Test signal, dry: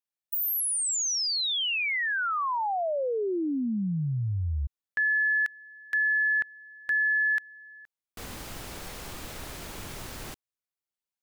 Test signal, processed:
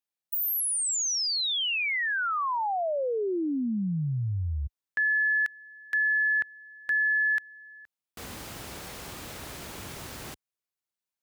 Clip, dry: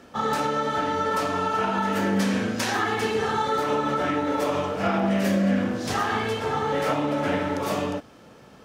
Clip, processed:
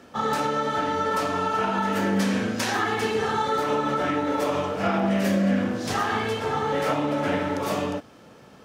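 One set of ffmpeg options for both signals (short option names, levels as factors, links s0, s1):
-af "highpass=59"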